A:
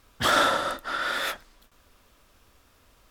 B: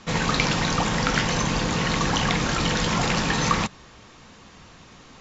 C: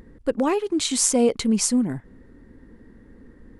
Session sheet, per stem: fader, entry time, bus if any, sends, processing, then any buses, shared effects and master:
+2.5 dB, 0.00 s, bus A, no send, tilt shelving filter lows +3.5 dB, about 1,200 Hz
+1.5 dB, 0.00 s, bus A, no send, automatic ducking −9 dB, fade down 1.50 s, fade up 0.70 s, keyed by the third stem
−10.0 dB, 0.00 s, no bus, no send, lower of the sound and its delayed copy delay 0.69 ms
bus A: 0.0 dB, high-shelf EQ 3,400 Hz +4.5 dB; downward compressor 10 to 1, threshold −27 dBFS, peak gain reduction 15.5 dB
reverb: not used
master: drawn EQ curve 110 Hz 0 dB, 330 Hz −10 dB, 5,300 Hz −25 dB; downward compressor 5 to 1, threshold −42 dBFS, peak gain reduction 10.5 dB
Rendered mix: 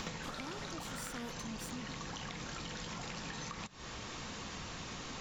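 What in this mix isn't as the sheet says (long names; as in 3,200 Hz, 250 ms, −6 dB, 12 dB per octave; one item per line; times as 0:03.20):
stem B +1.5 dB → +9.5 dB
master: missing drawn EQ curve 110 Hz 0 dB, 330 Hz −10 dB, 5,300 Hz −25 dB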